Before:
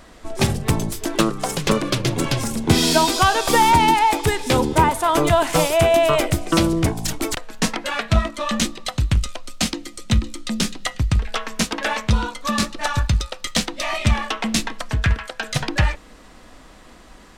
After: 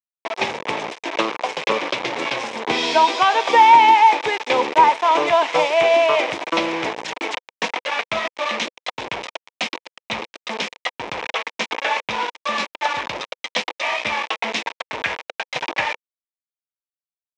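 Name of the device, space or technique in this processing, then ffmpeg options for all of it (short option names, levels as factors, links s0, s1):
hand-held game console: -af "acrusher=bits=3:mix=0:aa=0.000001,highpass=470,equalizer=f=500:t=q:w=4:g=4,equalizer=f=930:t=q:w=4:g=6,equalizer=f=1400:t=q:w=4:g=-5,equalizer=f=2300:t=q:w=4:g=6,equalizer=f=4500:t=q:w=4:g=-7,lowpass=f=4900:w=0.5412,lowpass=f=4900:w=1.3066"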